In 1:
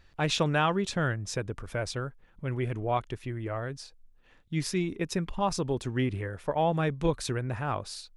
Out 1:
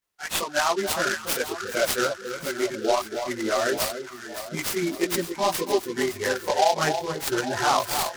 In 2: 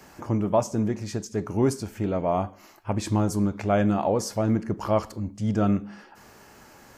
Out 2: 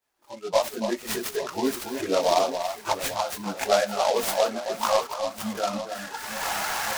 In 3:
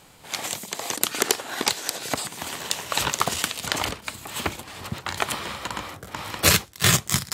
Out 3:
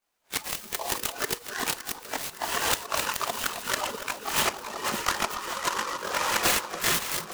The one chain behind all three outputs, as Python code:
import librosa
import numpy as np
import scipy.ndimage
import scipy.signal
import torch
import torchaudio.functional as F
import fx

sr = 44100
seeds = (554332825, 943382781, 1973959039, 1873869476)

p1 = fx.recorder_agc(x, sr, target_db=-5.5, rise_db_per_s=28.0, max_gain_db=30)
p2 = scipy.signal.sosfilt(scipy.signal.butter(2, 440.0, 'highpass', fs=sr, output='sos'), p1)
p3 = fx.quant_dither(p2, sr, seeds[0], bits=6, dither='triangular')
p4 = p2 + (p3 * librosa.db_to_amplitude(-12.0))
p5 = fx.noise_reduce_blind(p4, sr, reduce_db=25)
p6 = np.clip(10.0 ** (6.0 / 20.0) * p5, -1.0, 1.0) / 10.0 ** (6.0 / 20.0)
p7 = fx.chorus_voices(p6, sr, voices=6, hz=1.1, base_ms=21, depth_ms=3.0, mix_pct=65)
p8 = p7 + fx.echo_alternate(p7, sr, ms=282, hz=1300.0, feedback_pct=72, wet_db=-8.0, dry=0)
p9 = fx.noise_mod_delay(p8, sr, seeds[1], noise_hz=3900.0, depth_ms=0.054)
y = p9 * librosa.db_to_amplitude(-4.5)